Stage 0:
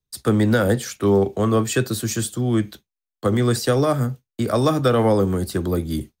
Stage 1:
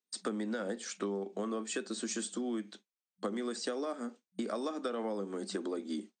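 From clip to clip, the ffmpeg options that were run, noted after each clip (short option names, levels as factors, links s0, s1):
-af "afftfilt=real='re*between(b*sr/4096,190,8800)':imag='im*between(b*sr/4096,190,8800)':win_size=4096:overlap=0.75,acompressor=threshold=0.0398:ratio=10,volume=0.562"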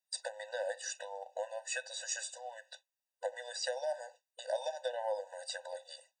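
-af "afftfilt=real='re*eq(mod(floor(b*sr/1024/500),2),1)':imag='im*eq(mod(floor(b*sr/1024/500),2),1)':win_size=1024:overlap=0.75,volume=1.68"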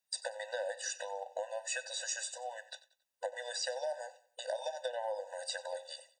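-af "acompressor=threshold=0.0141:ratio=6,aecho=1:1:92|184|276:0.126|0.0466|0.0172,volume=1.5"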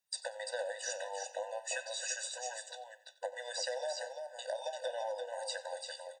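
-af "aecho=1:1:342:0.531,flanger=delay=5.5:depth=5.1:regen=89:speed=0.47:shape=triangular,volume=1.5"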